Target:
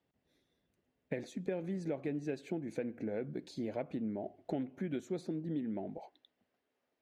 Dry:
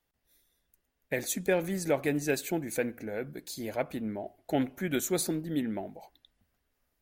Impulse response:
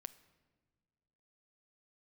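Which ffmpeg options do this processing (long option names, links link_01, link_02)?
-af "equalizer=frequency=1400:width_type=o:width=2.3:gain=-11,acompressor=threshold=-42dB:ratio=6,asetnsamples=nb_out_samples=441:pad=0,asendcmd='5.98 highpass f 380',highpass=130,lowpass=2400,volume=7.5dB"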